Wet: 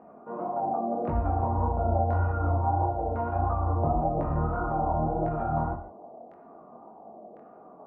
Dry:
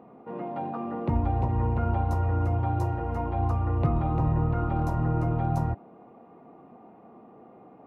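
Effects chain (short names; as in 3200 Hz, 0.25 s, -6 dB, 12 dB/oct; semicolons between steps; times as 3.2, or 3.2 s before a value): thirty-one-band EQ 125 Hz -10 dB, 630 Hz +8 dB, 2000 Hz -8 dB; LFO low-pass saw down 0.95 Hz 600–1800 Hz; chorus 1.7 Hz, delay 18.5 ms, depth 7.4 ms; non-linear reverb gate 0.17 s flat, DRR 8.5 dB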